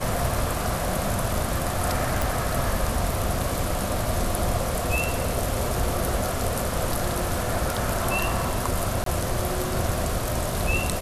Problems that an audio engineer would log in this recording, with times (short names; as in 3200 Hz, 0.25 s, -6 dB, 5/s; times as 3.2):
2.22 pop
9.04–9.06 gap 23 ms